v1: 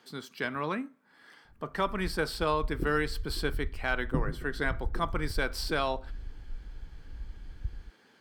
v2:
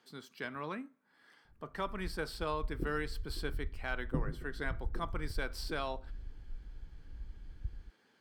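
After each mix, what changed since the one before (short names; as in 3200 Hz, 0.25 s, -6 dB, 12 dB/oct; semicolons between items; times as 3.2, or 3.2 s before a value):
speech -8.0 dB; background -4.5 dB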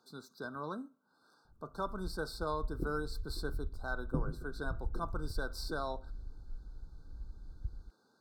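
speech: add brick-wall FIR band-stop 1600–3500 Hz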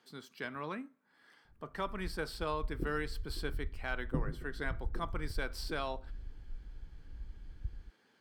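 speech: remove brick-wall FIR band-stop 1600–3500 Hz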